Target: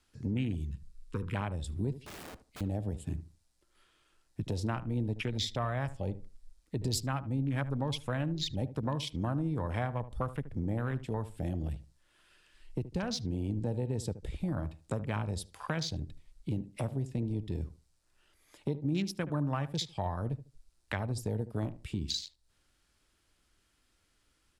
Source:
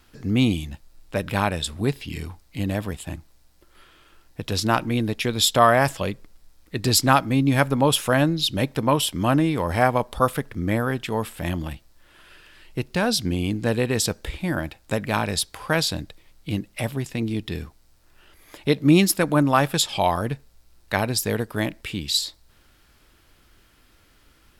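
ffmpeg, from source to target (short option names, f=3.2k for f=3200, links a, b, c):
-filter_complex "[0:a]lowpass=f=9.9k:w=0.5412,lowpass=f=9.9k:w=1.3066,afwtdn=0.0447,highshelf=f=6.2k:g=11.5,acrossover=split=120[a][b];[a]alimiter=level_in=9dB:limit=-24dB:level=0:latency=1,volume=-9dB[c];[b]acompressor=threshold=-35dB:ratio=5[d];[c][d]amix=inputs=2:normalize=0,asettb=1/sr,asplit=3[e][f][g];[e]atrim=end=0.704[h];[f]atrim=start=0.7:end=1.35,asetpts=PTS-STARTPTS,afade=t=in:d=0.004:c=qsin,afade=t=out:st=0.646:d=0.004:c=qsin,asuperstop=centerf=680:order=12:qfactor=1.6[i];[g]atrim=start=1.346[j];[h][i]acrossfade=d=0.004:c1=hsin:c2=qsin[k];[k][j]acrossfade=d=0.004:c1=qsin:c2=hsin,asettb=1/sr,asplit=3[l][m][n];[l]atrim=end=1.954[o];[m]atrim=start=1.95:end=2.61,asetpts=PTS-STARTPTS,afade=t=in:d=0.004:c=qsin,afade=t=out:st=0.656:d=0.004:c=qsin,aeval=exprs='(mod(119*val(0)+1,2)-1)/119':c=same[p];[n]atrim=start=2.606[q];[o][p]acrossfade=d=0.004:c1=hsin:c2=qsin[r];[r][q]acrossfade=d=0.004:c1=qsin:c2=hsin,asplit=2[s][t];[t]adelay=75,lowpass=f=1.1k:p=1,volume=-13dB,asplit=2[u][v];[v]adelay=75,lowpass=f=1.1k:p=1,volume=0.24,asplit=2[w][x];[x]adelay=75,lowpass=f=1.1k:p=1,volume=0.24[y];[s][u][w][y]amix=inputs=4:normalize=0"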